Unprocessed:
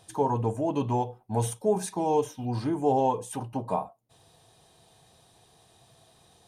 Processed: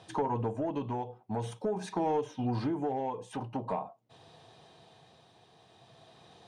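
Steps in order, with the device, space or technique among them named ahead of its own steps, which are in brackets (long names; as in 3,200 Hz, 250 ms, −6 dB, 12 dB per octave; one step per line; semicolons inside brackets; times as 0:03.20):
AM radio (band-pass filter 120–4,000 Hz; downward compressor 6 to 1, threshold −31 dBFS, peak gain reduction 12 dB; soft clipping −24.5 dBFS, distortion −21 dB; amplitude tremolo 0.46 Hz, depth 40%)
level +5 dB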